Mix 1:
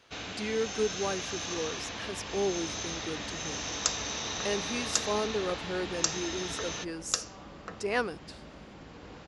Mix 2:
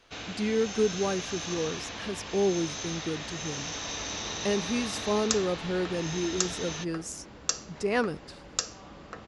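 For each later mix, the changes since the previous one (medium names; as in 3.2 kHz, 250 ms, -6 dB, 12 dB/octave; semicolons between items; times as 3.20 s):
speech: remove high-pass 510 Hz 6 dB/octave; second sound: entry +1.45 s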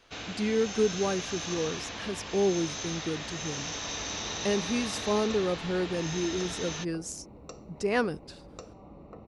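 second sound: add boxcar filter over 27 samples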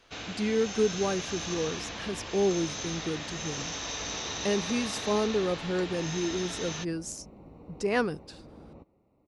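second sound: entry -2.80 s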